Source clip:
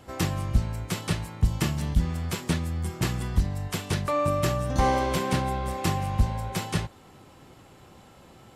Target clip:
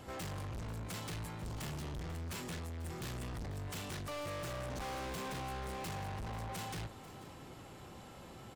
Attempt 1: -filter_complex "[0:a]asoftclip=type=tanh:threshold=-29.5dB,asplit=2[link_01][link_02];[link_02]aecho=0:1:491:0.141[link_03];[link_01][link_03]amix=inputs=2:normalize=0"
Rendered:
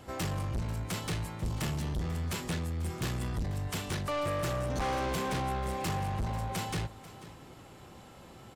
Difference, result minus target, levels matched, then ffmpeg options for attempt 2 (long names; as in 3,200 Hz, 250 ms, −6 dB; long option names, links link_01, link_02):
soft clipping: distortion −4 dB
-filter_complex "[0:a]asoftclip=type=tanh:threshold=-40.5dB,asplit=2[link_01][link_02];[link_02]aecho=0:1:491:0.141[link_03];[link_01][link_03]amix=inputs=2:normalize=0"